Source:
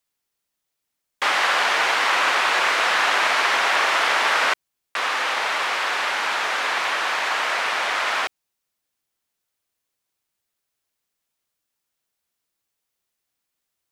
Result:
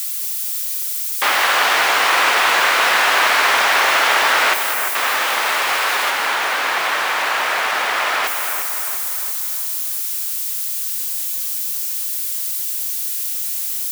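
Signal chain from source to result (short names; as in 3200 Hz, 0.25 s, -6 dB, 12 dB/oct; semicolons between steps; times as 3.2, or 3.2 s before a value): switching spikes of -24 dBFS; 6.1–8.24 high shelf 4800 Hz -6 dB; split-band echo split 2700 Hz, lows 0.348 s, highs 0.203 s, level -7 dB; gain +3.5 dB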